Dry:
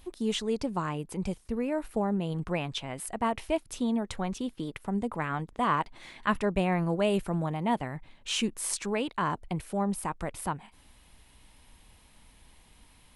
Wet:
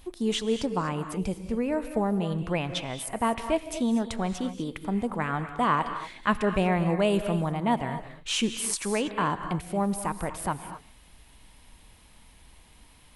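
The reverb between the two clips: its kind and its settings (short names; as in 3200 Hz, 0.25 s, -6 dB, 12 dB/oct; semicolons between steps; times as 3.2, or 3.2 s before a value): non-linear reverb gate 0.27 s rising, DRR 9 dB; gain +2.5 dB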